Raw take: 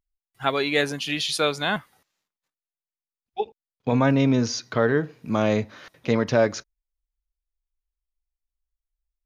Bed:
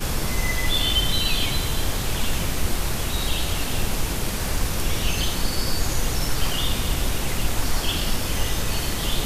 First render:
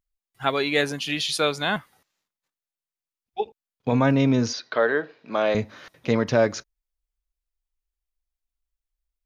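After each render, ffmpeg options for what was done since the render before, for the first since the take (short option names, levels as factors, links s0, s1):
-filter_complex "[0:a]asettb=1/sr,asplit=3[s0][s1][s2];[s0]atrim=end=4.534[s3];[s1]atrim=start=4.53:end=5.55,asetpts=PTS-STARTPTS,afade=t=in:d=0.004:c=qsin,afade=t=out:st=1.016:d=0.004:c=qsin,highpass=400,equalizer=f=600:t=q:w=4:g=4,equalizer=f=1600:t=q:w=4:g=4,equalizer=f=3900:t=q:w=4:g=4,lowpass=f=4800:w=0.5412,lowpass=f=4800:w=1.3066[s4];[s2]atrim=start=5.546[s5];[s3][s4]acrossfade=d=0.004:c1=hsin:c2=qsin[s6];[s6][s5]acrossfade=d=0.004:c1=qsin:c2=hsin"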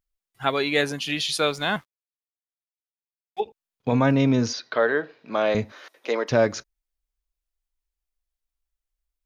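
-filter_complex "[0:a]asettb=1/sr,asplit=3[s0][s1][s2];[s0]atrim=end=1.394[s3];[s1]atrim=start=1.39:end=3.4,asetpts=PTS-STARTPTS,afade=t=in:d=0.004:c=qsin,afade=t=out:st=2.006:d=0.004:c=qsin,aeval=exprs='sgn(val(0))*max(abs(val(0))-0.00282,0)':c=same[s4];[s2]atrim=start=3.396[s5];[s3][s4]acrossfade=d=0.004:c1=hsin:c2=qsin[s6];[s6][s5]acrossfade=d=0.004:c1=qsin:c2=hsin,asettb=1/sr,asplit=3[s7][s8][s9];[s7]atrim=end=5.724[s10];[s8]atrim=start=5.72:end=6.31,asetpts=PTS-STARTPTS,afade=t=in:d=0.004:c=qsin,afade=t=out:st=0.586:d=0.004:c=qsin,highpass=f=350:w=0.5412,highpass=f=350:w=1.3066[s11];[s9]atrim=start=6.306[s12];[s10][s11]acrossfade=d=0.004:c1=hsin:c2=qsin[s13];[s13][s12]acrossfade=d=0.004:c1=qsin:c2=hsin"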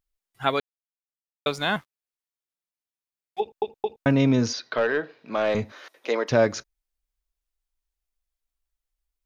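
-filter_complex "[0:a]asettb=1/sr,asplit=3[s0][s1][s2];[s0]atrim=end=4.774[s3];[s1]atrim=start=4.77:end=5.68,asetpts=PTS-STARTPTS,afade=t=in:d=0.004:c=qsin,afade=t=out:st=0.906:d=0.004:c=qsin,aeval=exprs='(tanh(5.62*val(0)+0.1)-tanh(0.1))/5.62':c=same[s4];[s2]atrim=start=5.676[s5];[s3][s4]acrossfade=d=0.004:c1=hsin:c2=qsin[s6];[s6][s5]acrossfade=d=0.004:c1=qsin:c2=hsin,asplit=6[s7][s8][s9][s10][s11][s12];[s7]atrim=end=0.6,asetpts=PTS-STARTPTS,afade=t=out:st=0.596:d=0.004:c=hsin[s13];[s8]atrim=start=0.6:end=1.46,asetpts=PTS-STARTPTS,volume=0[s14];[s9]atrim=start=1.46:end=3.622,asetpts=PTS-STARTPTS,afade=t=in:d=0.004:c=hsin[s15];[s10]atrim=start=3.398:end=3.622[s16];[s11]atrim=start=3.398:end=3.622[s17];[s12]atrim=start=4.058[s18];[s13][s14][s15]concat=n=3:v=0:a=1[s19];[s19][s16]acrossfade=d=0.004:c1=hsin:c2=hsin[s20];[s20][s17]acrossfade=d=0.004:c1=hsin:c2=hsin[s21];[s21][s18]acrossfade=d=0.004:c1=hsin:c2=hsin"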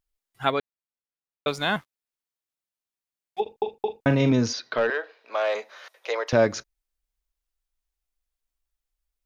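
-filter_complex "[0:a]asettb=1/sr,asplit=3[s0][s1][s2];[s0]atrim=end=0.504[s3];[s1]atrim=start=0.5:end=1.48,asetpts=PTS-STARTPTS,afade=t=in:d=0.004:c=qsin,afade=t=out:st=0.976:d=0.004:c=qsin,lowpass=f=2400:p=1[s4];[s2]atrim=start=1.476[s5];[s3][s4]acrossfade=d=0.004:c1=hsin:c2=qsin[s6];[s6][s5]acrossfade=d=0.004:c1=qsin:c2=hsin,asettb=1/sr,asplit=3[s7][s8][s9];[s7]atrim=end=3.424[s10];[s8]atrim=start=3.42:end=4.32,asetpts=PTS-STARTPTS,afade=t=in:d=0.004:c=qsin,afade=t=out:st=0.896:d=0.004:c=qsin,asplit=2[s11][s12];[s12]adelay=42,volume=0.376[s13];[s11][s13]amix=inputs=2:normalize=0,atrim=end_sample=39690[s14];[s9]atrim=start=4.316[s15];[s10][s14]acrossfade=d=0.004:c1=hsin:c2=qsin[s16];[s16][s15]acrossfade=d=0.004:c1=qsin:c2=hsin,asettb=1/sr,asplit=3[s17][s18][s19];[s17]atrim=end=4.904[s20];[s18]atrim=start=4.9:end=6.33,asetpts=PTS-STARTPTS,afade=t=in:d=0.004:c=qsin,afade=t=out:st=1.426:d=0.004:c=qsin,highpass=f=480:w=0.5412,highpass=f=480:w=1.3066[s21];[s19]atrim=start=6.326[s22];[s20][s21]acrossfade=d=0.004:c1=hsin:c2=qsin[s23];[s23][s22]acrossfade=d=0.004:c1=qsin:c2=hsin"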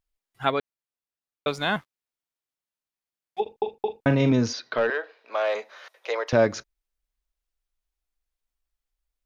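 -af "highshelf=f=5400:g=-4.5"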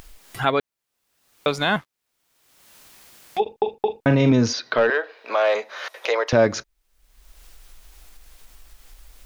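-filter_complex "[0:a]asplit=2[s0][s1];[s1]alimiter=limit=0.141:level=0:latency=1:release=67,volume=1[s2];[s0][s2]amix=inputs=2:normalize=0,acompressor=mode=upward:threshold=0.0891:ratio=2.5"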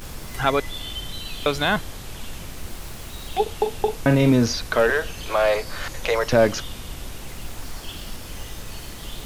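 -filter_complex "[1:a]volume=0.282[s0];[0:a][s0]amix=inputs=2:normalize=0"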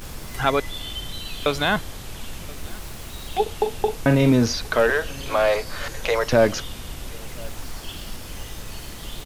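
-af "aecho=1:1:1029:0.0631"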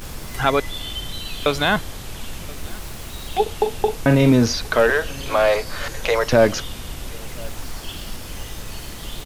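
-af "volume=1.33,alimiter=limit=0.708:level=0:latency=1"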